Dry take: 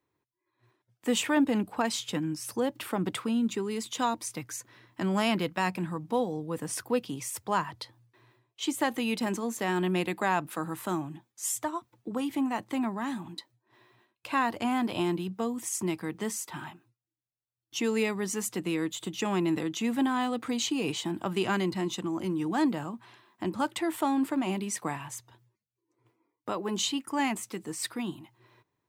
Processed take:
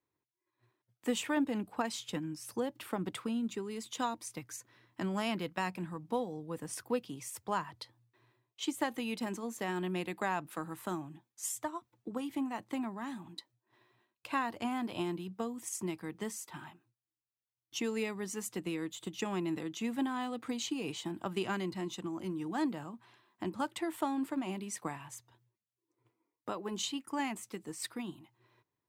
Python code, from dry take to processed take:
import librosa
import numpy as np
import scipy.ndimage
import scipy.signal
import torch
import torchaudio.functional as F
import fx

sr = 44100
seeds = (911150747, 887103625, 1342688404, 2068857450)

y = fx.transient(x, sr, attack_db=4, sustain_db=0)
y = y * librosa.db_to_amplitude(-8.0)